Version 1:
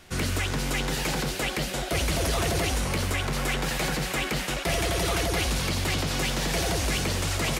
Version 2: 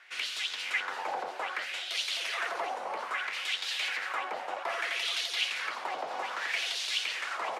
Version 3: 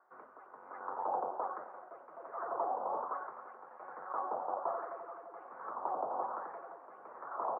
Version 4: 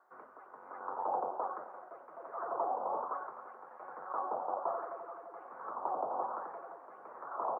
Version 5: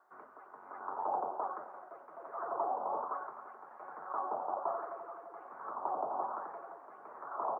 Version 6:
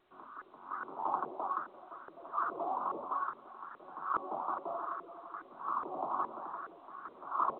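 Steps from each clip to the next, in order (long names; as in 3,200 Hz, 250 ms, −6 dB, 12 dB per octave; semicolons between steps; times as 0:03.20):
high-pass filter 470 Hz 12 dB per octave; auto-filter band-pass sine 0.62 Hz 750–3,700 Hz; level +4 dB
Butterworth low-pass 1,200 Hz 48 dB per octave; single-tap delay 263 ms −15.5 dB
dynamic equaliser 1,900 Hz, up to −5 dB, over −59 dBFS, Q 2.6; level +1 dB
notch filter 510 Hz, Q 12
flat-topped bell 610 Hz −12.5 dB 1.3 octaves; auto-filter low-pass saw up 2.4 Hz 430–1,600 Hz; level +4 dB; A-law companding 64 kbit/s 8,000 Hz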